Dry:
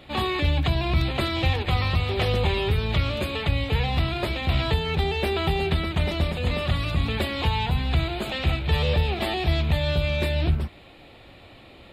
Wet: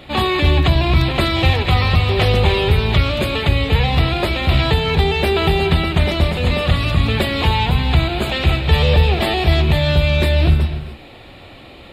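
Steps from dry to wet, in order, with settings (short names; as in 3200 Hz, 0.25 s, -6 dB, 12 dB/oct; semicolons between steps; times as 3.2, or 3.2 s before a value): non-linear reverb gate 0.32 s rising, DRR 10 dB; gain +8 dB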